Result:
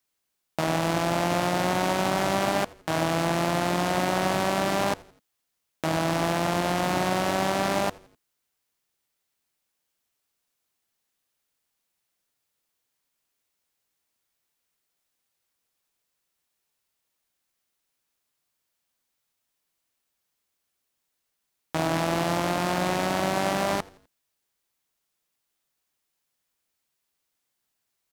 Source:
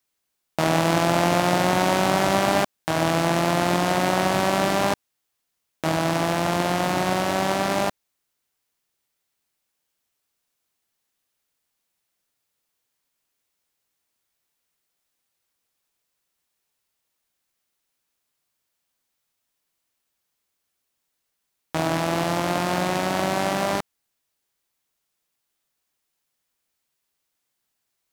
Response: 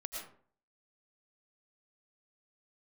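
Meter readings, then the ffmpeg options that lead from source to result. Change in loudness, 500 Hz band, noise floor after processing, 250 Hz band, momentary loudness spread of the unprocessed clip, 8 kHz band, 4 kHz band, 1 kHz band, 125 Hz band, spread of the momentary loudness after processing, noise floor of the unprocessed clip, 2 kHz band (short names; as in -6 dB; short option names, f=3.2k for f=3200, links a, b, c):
-3.5 dB, -3.5 dB, -80 dBFS, -3.5 dB, 6 LU, -3.5 dB, -3.5 dB, -3.5 dB, -3.5 dB, 4 LU, -78 dBFS, -3.5 dB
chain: -filter_complex "[0:a]alimiter=limit=-10dB:level=0:latency=1,asplit=2[a][b];[b]asplit=3[c][d][e];[c]adelay=84,afreqshift=-110,volume=-23dB[f];[d]adelay=168,afreqshift=-220,volume=-29.4dB[g];[e]adelay=252,afreqshift=-330,volume=-35.8dB[h];[f][g][h]amix=inputs=3:normalize=0[i];[a][i]amix=inputs=2:normalize=0,volume=-1.5dB"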